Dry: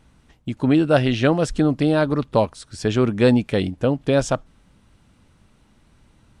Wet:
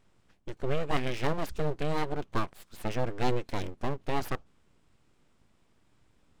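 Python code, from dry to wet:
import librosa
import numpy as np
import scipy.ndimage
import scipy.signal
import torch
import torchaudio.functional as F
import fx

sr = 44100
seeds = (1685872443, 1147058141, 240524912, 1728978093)

y = np.abs(x)
y = fx.formant_shift(y, sr, semitones=-2)
y = y * librosa.db_to_amplitude(-9.0)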